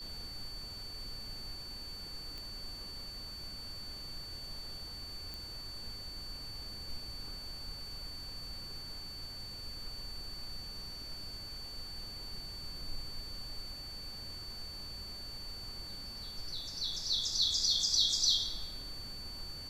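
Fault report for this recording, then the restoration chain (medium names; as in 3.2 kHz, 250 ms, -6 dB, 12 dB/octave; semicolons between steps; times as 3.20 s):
whine 4.5 kHz -44 dBFS
2.38 s: pop
5.34 s: pop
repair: de-click; band-stop 4.5 kHz, Q 30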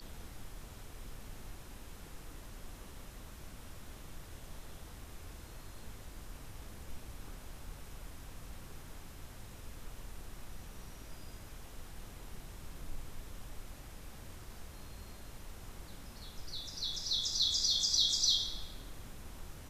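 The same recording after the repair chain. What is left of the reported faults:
nothing left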